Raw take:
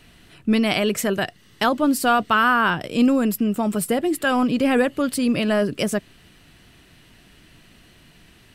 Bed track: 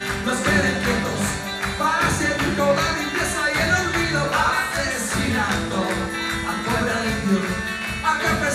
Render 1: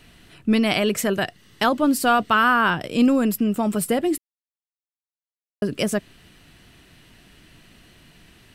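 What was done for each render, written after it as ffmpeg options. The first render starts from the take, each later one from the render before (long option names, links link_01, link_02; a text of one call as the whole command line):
ffmpeg -i in.wav -filter_complex "[0:a]asplit=3[link_01][link_02][link_03];[link_01]atrim=end=4.18,asetpts=PTS-STARTPTS,afade=type=out:start_time=4.176:duration=0.004:curve=hsin[link_04];[link_02]atrim=start=4.18:end=5.62,asetpts=PTS-STARTPTS,volume=0[link_05];[link_03]atrim=start=5.62,asetpts=PTS-STARTPTS,afade=type=in:duration=0.004:curve=hsin[link_06];[link_04][link_05][link_06]concat=n=3:v=0:a=1" out.wav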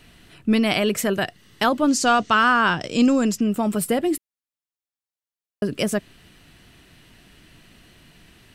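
ffmpeg -i in.wav -filter_complex "[0:a]asettb=1/sr,asplit=3[link_01][link_02][link_03];[link_01]atrim=end=1.884[link_04];[link_02]atrim=start=1.88:end=3.41,asetpts=PTS-STARTPTS,afade=type=in:duration=0.004:curve=qsin,afade=type=out:start_time=1.526:duration=0.004:curve=qsin,lowpass=frequency=6500:width_type=q:width=4.7[link_05];[link_03]atrim=start=3.406[link_06];[link_04][link_05]acrossfade=duration=0.004:curve1=hsin:curve2=qsin[link_07];[link_07][link_06]acrossfade=duration=0.004:curve1=qsin:curve2=hsin" out.wav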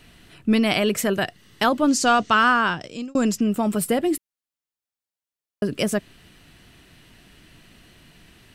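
ffmpeg -i in.wav -filter_complex "[0:a]asplit=2[link_01][link_02];[link_01]atrim=end=3.15,asetpts=PTS-STARTPTS,afade=type=out:start_time=2.49:duration=0.66[link_03];[link_02]atrim=start=3.15,asetpts=PTS-STARTPTS,afade=type=in:duration=0.004:curve=hsin[link_04];[link_03][link_04]concat=n=2:v=0:a=1" out.wav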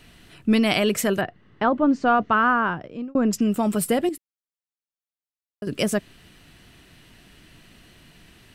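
ffmpeg -i in.wav -filter_complex "[0:a]asettb=1/sr,asplit=3[link_01][link_02][link_03];[link_01]atrim=end=1.214[link_04];[link_02]atrim=start=1.21:end=3.33,asetpts=PTS-STARTPTS,afade=type=in:duration=0.004:curve=qsin,afade=type=out:start_time=2.116:duration=0.004:curve=qsin,lowpass=1500[link_05];[link_03]atrim=start=3.326[link_06];[link_04][link_05]acrossfade=duration=0.004:curve1=hsin:curve2=qsin[link_07];[link_07][link_06]acrossfade=duration=0.004:curve1=qsin:curve2=hsin,asplit=3[link_08][link_09][link_10];[link_08]atrim=end=4.092[link_11];[link_09]atrim=start=4.088:end=5.672,asetpts=PTS-STARTPTS,volume=-9.5dB[link_12];[link_10]atrim=start=5.668[link_13];[link_11][link_12]acrossfade=duration=0.004:curve1=hsin:curve2=hsin[link_14];[link_14][link_13]acrossfade=duration=0.004:curve1=hsin:curve2=hsin" out.wav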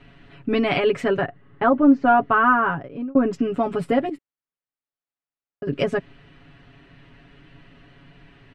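ffmpeg -i in.wav -af "lowpass=2200,aecho=1:1:7.2:0.92" out.wav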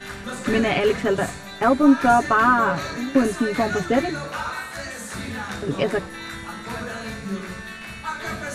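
ffmpeg -i in.wav -i bed.wav -filter_complex "[1:a]volume=-9.5dB[link_01];[0:a][link_01]amix=inputs=2:normalize=0" out.wav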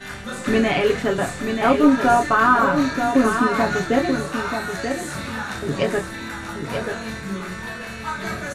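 ffmpeg -i in.wav -filter_complex "[0:a]asplit=2[link_01][link_02];[link_02]adelay=27,volume=-6.5dB[link_03];[link_01][link_03]amix=inputs=2:normalize=0,aecho=1:1:934:0.473" out.wav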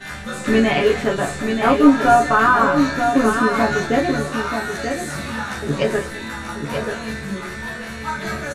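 ffmpeg -i in.wav -filter_complex "[0:a]asplit=2[link_01][link_02];[link_02]adelay=14,volume=-3.5dB[link_03];[link_01][link_03]amix=inputs=2:normalize=0,aecho=1:1:209:0.158" out.wav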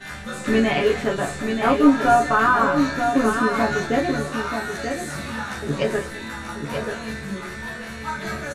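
ffmpeg -i in.wav -af "volume=-3dB" out.wav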